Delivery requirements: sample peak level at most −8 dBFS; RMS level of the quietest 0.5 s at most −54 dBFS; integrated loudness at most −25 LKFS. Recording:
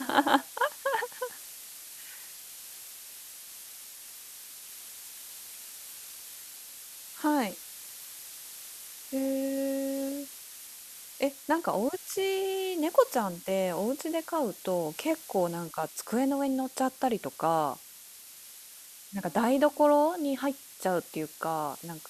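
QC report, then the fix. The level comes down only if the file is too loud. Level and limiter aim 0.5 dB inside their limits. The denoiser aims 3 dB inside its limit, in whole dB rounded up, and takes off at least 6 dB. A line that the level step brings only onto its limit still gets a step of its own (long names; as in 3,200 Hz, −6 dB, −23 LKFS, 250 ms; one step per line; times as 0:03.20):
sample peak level −7.0 dBFS: out of spec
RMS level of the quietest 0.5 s −50 dBFS: out of spec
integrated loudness −30.5 LKFS: in spec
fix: broadband denoise 7 dB, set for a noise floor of −50 dBFS
brickwall limiter −8.5 dBFS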